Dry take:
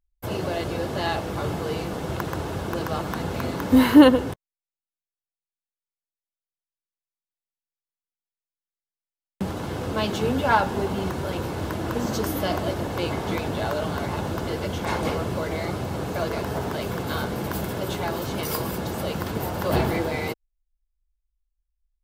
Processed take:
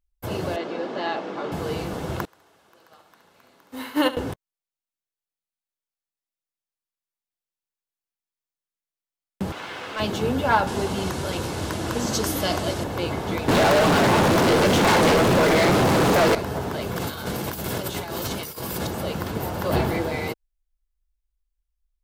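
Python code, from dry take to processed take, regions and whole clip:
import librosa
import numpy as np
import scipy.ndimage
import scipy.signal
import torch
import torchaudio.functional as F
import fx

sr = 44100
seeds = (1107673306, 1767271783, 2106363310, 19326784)

y = fx.chain(x, sr, fx.highpass(hz=220.0, slope=24),
    fx.air_absorb(metres=150.0), at=(0.56, 1.52))
y = fx.chain(y, sr, fx.highpass(hz=1000.0, slope=6),
    fx.echo_feedback(ms=69, feedback_pct=41, wet_db=-6.0),
    fx.upward_expand(threshold_db=-32.0, expansion=2.5), at=(2.25, 4.17))
y = fx.chain(y, sr, fx.bandpass_q(hz=2300.0, q=1.1),
    fx.leveller(passes=2), at=(9.52, 10.0))
y = fx.chain(y, sr, fx.lowpass(hz=10000.0, slope=12),
    fx.high_shelf(hz=3400.0, db=11.5), at=(10.67, 12.84))
y = fx.chain(y, sr, fx.highpass(hz=150.0, slope=12),
    fx.leveller(passes=5),
    fx.doppler_dist(depth_ms=0.15), at=(13.48, 16.35))
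y = fx.chain(y, sr, fx.high_shelf(hz=2600.0, db=8.0),
    fx.over_compress(threshold_db=-29.0, ratio=-0.5), at=(16.96, 18.87))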